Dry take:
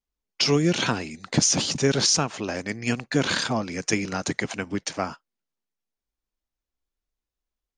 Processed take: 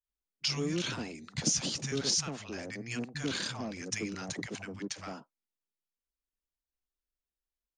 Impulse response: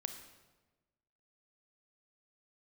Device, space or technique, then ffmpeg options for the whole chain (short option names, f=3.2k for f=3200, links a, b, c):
one-band saturation: -filter_complex "[0:a]acrossover=split=150|820[a][b][c];[c]adelay=40[d];[b]adelay=90[e];[a][e][d]amix=inputs=3:normalize=0,acrossover=split=340|2400[f][g][h];[g]asoftclip=type=tanh:threshold=-30dB[i];[f][i][h]amix=inputs=3:normalize=0,volume=-8.5dB"